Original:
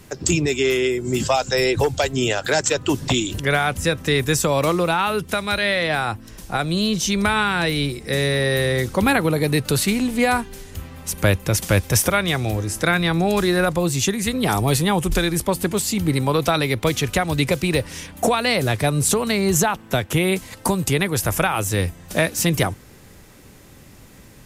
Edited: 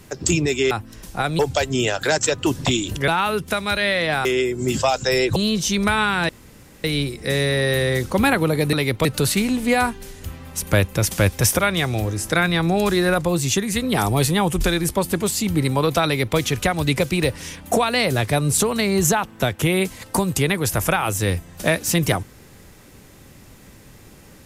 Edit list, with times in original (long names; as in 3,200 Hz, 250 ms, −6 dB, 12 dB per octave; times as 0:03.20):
0:00.71–0:01.82: swap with 0:06.06–0:06.74
0:03.51–0:04.89: remove
0:07.67: splice in room tone 0.55 s
0:16.56–0:16.88: duplicate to 0:09.56